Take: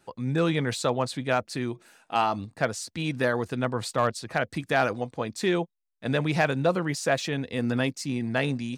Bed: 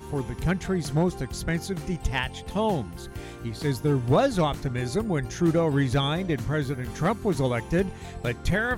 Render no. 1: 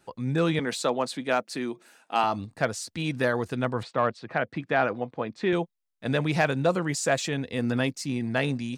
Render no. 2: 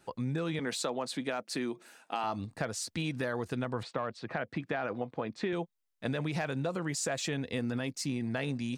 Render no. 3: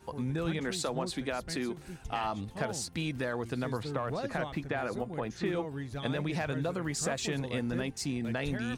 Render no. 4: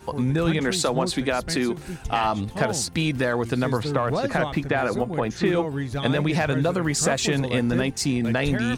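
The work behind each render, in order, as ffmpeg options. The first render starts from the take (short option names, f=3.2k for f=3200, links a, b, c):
-filter_complex "[0:a]asettb=1/sr,asplit=3[a][b][c];[a]atrim=end=0.594[d];[b]atrim=start=0.59:end=2.24,asetpts=PTS-STARTPTS,afade=t=in:d=0.004:c=qsin,afade=t=out:st=1.646:d=0.004:c=qsin,highpass=f=180:w=0.5412,highpass=f=180:w=1.3066[e];[c]atrim=start=2.236[f];[d][e]acrossfade=d=0.004:c1=hsin:c2=qsin[g];[g][f]acrossfade=d=0.004:c1=qsin:c2=hsin,asettb=1/sr,asplit=3[h][i][j];[h]atrim=end=3.834[k];[i]atrim=start=3.83:end=5.53,asetpts=PTS-STARTPTS,afade=t=in:d=0.004:c=qsin,afade=t=out:st=1.696:d=0.004:c=qsin,highpass=130,lowpass=2.7k[l];[j]atrim=start=5.526[m];[k][l]acrossfade=d=0.004:c1=hsin:c2=qsin[n];[n][m]acrossfade=d=0.004:c1=qsin:c2=hsin,asettb=1/sr,asplit=3[o][p][q];[o]atrim=end=6.654[r];[p]atrim=start=6.65:end=7.34,asetpts=PTS-STARTPTS,afade=t=in:d=0.004:c=qsin,afade=t=out:st=0.686:d=0.004:c=qsin,equalizer=f=7.5k:w=3.4:g=8[s];[q]atrim=start=7.336[t];[r][s]acrossfade=d=0.004:c1=hsin:c2=qsin[u];[u][t]acrossfade=d=0.004:c1=qsin:c2=hsin"
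-af "alimiter=limit=-17.5dB:level=0:latency=1:release=45,acompressor=threshold=-30dB:ratio=6"
-filter_complex "[1:a]volume=-15.5dB[a];[0:a][a]amix=inputs=2:normalize=0"
-af "volume=10.5dB"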